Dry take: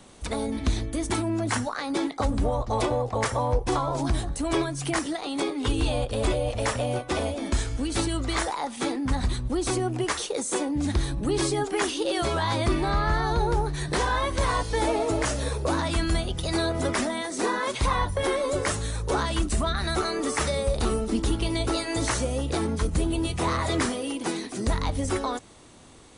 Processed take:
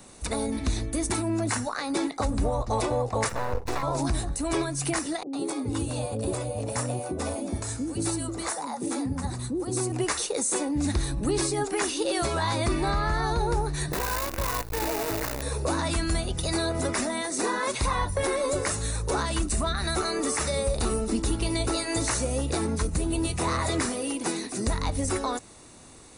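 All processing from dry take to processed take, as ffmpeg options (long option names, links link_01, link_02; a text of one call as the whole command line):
ffmpeg -i in.wav -filter_complex "[0:a]asettb=1/sr,asplit=3[link_01][link_02][link_03];[link_01]atrim=end=3.294[link_04];[link_02]atrim=start=3.29:end=3.83,asetpts=PTS-STARTPTS,afade=type=in:duration=0.004:curve=qsin,afade=type=out:start_time=0.536:duration=0.004:curve=qsin,lowpass=6100,aeval=exprs='max(val(0),0)':channel_layout=same,asplit=2[link_05][link_06];[link_06]adelay=12,volume=-11.5dB[link_07];[link_05][link_07]amix=inputs=2:normalize=0,atrim=end_sample=23814[link_08];[link_03]atrim=start=3.826[link_09];[link_04][link_08]acrossfade=duration=0.004:curve1=hsin:curve2=qsin[link_10];[link_10][link_09]acrossfade=duration=0.004:curve1=qsin:curve2=hsin,asettb=1/sr,asplit=3[link_11][link_12][link_13];[link_11]atrim=end=5.234[link_14];[link_12]atrim=start=5.23:end=9.92,asetpts=PTS-STARTPTS,afade=type=in:duration=0.004:curve=qsin,afade=type=out:start_time=4.686:duration=0.004:curve=qsin,highpass=frequency=81:width=0.5412,highpass=frequency=81:width=1.3066,equalizer=frequency=2700:width_type=o:width=2.4:gain=-9.5,acrossover=split=510[link_15][link_16];[link_16]adelay=100[link_17];[link_15][link_17]amix=inputs=2:normalize=0,atrim=end_sample=206829[link_18];[link_13]atrim=start=9.916[link_19];[link_14][link_18]acrossfade=duration=0.004:curve1=hsin:curve2=qsin[link_20];[link_20][link_19]acrossfade=duration=0.004:curve1=qsin:curve2=hsin,asettb=1/sr,asplit=3[link_21][link_22][link_23];[link_21]atrim=end=13.924[link_24];[link_22]atrim=start=13.92:end=15.42,asetpts=PTS-STARTPTS,afade=type=in:duration=0.004:curve=qsin,afade=type=out:start_time=1.496:duration=0.004:curve=qsin,lowpass=2300,acrusher=bits=5:dc=4:mix=0:aa=0.000001[link_25];[link_23]atrim=start=15.416[link_26];[link_24][link_25]acrossfade=duration=0.004:curve1=hsin:curve2=qsin[link_27];[link_27][link_26]acrossfade=duration=0.004:curve1=qsin:curve2=hsin,highshelf=frequency=8500:gain=11.5,bandreject=frequency=3200:width=7.3,alimiter=limit=-16.5dB:level=0:latency=1:release=181" out.wav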